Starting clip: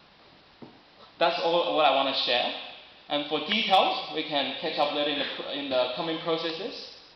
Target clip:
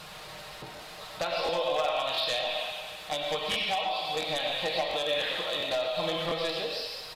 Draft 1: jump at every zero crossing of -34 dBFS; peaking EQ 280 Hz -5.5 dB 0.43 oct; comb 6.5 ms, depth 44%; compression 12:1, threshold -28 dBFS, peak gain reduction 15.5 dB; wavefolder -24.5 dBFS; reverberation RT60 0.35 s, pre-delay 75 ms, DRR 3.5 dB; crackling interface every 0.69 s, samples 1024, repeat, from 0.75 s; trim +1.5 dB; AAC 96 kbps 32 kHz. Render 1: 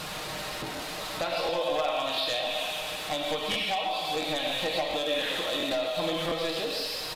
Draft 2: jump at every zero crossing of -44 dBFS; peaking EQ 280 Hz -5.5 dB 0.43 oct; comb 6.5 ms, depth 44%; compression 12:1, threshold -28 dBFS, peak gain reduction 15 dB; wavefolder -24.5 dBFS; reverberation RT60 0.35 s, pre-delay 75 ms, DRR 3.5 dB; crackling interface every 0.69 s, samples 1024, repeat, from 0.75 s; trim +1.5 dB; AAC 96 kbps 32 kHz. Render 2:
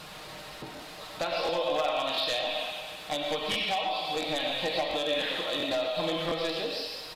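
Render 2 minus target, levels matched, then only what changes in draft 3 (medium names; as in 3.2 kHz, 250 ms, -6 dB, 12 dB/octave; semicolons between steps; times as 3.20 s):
250 Hz band +5.0 dB
change: peaking EQ 280 Hz -16.5 dB 0.43 oct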